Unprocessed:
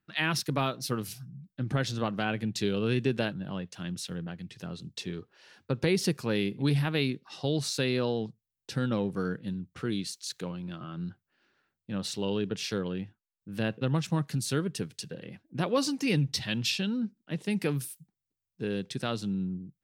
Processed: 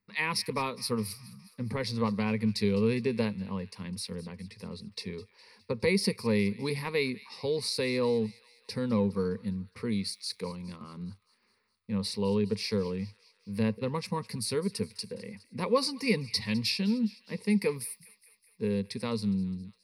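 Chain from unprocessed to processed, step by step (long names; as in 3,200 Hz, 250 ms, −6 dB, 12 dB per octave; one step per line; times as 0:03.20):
EQ curve with evenly spaced ripples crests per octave 0.9, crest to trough 16 dB
on a send: delay with a high-pass on its return 206 ms, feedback 60%, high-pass 1,600 Hz, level −18 dB
on the sum: level −3 dB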